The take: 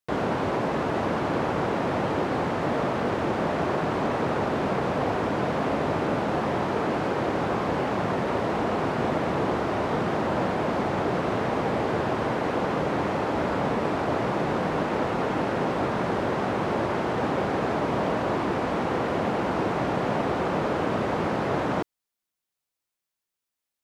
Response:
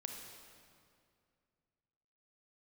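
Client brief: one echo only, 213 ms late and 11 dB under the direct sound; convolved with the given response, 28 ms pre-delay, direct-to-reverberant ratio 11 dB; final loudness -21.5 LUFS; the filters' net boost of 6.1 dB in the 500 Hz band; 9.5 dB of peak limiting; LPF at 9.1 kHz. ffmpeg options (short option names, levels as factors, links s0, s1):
-filter_complex "[0:a]lowpass=9100,equalizer=f=500:t=o:g=7.5,alimiter=limit=0.126:level=0:latency=1,aecho=1:1:213:0.282,asplit=2[s0][s1];[1:a]atrim=start_sample=2205,adelay=28[s2];[s1][s2]afir=irnorm=-1:irlink=0,volume=0.355[s3];[s0][s3]amix=inputs=2:normalize=0,volume=1.68"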